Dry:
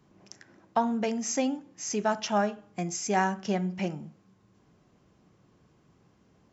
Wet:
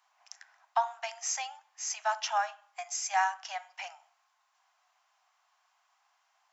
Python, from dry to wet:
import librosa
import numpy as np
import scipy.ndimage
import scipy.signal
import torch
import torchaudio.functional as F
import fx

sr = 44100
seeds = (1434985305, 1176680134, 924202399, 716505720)

y = scipy.signal.sosfilt(scipy.signal.butter(12, 700.0, 'highpass', fs=sr, output='sos'), x)